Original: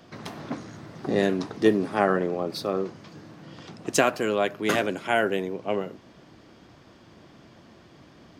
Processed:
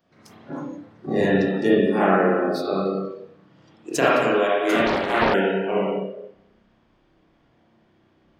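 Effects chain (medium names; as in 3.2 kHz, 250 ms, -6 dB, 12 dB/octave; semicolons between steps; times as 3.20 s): spring tank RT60 1.5 s, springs 31/53 ms, chirp 45 ms, DRR -8 dB; spectral noise reduction 15 dB; 4.86–5.34 s: loudspeaker Doppler distortion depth 0.68 ms; trim -3.5 dB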